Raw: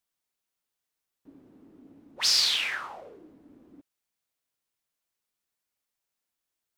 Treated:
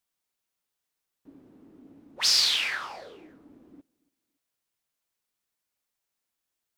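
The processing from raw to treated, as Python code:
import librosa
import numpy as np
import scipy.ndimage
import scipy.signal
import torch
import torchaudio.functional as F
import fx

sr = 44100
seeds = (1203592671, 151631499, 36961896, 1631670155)

y = fx.echo_feedback(x, sr, ms=282, feedback_pct=32, wet_db=-24)
y = y * 10.0 ** (1.0 / 20.0)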